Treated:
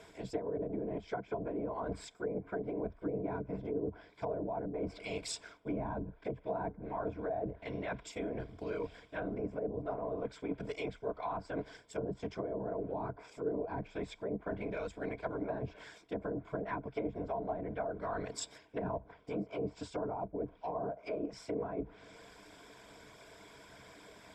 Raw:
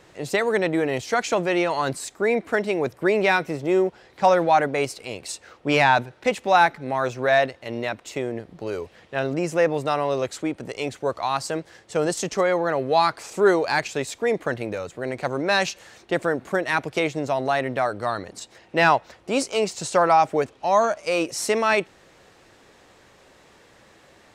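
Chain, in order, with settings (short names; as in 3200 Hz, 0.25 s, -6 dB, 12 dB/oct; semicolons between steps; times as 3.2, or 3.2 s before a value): treble ducked by the level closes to 400 Hz, closed at -17.5 dBFS; whisperiser; reverse; compressor 4:1, threshold -34 dBFS, peak gain reduction 15.5 dB; reverse; ripple EQ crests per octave 1.7, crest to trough 10 dB; gain -3.5 dB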